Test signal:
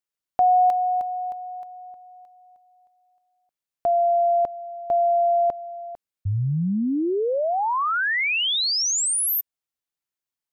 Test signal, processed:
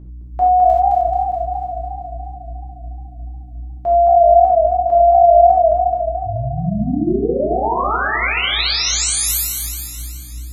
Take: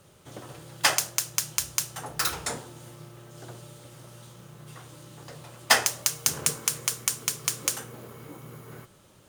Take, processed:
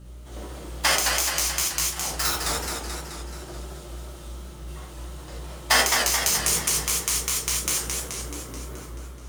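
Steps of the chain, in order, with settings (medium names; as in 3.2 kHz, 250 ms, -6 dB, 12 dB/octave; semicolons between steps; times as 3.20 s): hum 60 Hz, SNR 12 dB; gated-style reverb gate 110 ms flat, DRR -4 dB; modulated delay 215 ms, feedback 62%, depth 155 cents, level -4.5 dB; trim -3 dB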